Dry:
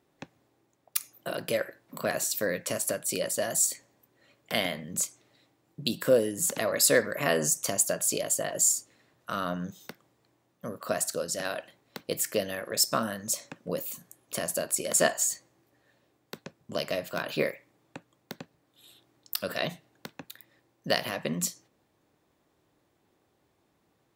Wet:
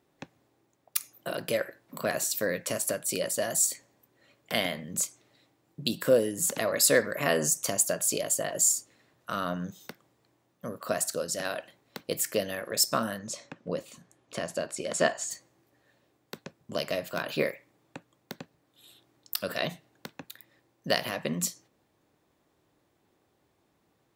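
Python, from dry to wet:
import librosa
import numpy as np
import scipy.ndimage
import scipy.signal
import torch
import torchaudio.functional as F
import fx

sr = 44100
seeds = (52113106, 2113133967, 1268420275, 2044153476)

y = fx.air_absorb(x, sr, metres=89.0, at=(13.18, 15.3), fade=0.02)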